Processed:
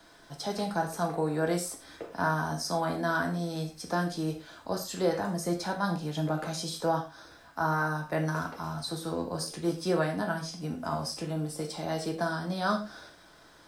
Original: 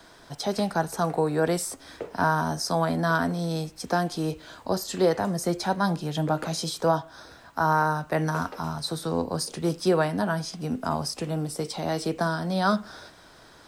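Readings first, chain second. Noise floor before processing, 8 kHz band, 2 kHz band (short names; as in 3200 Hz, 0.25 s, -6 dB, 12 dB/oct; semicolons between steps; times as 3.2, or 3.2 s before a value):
-52 dBFS, -4.5 dB, -3.0 dB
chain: crackle 550/s -55 dBFS; non-linear reverb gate 0.14 s falling, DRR 1.5 dB; gain -6.5 dB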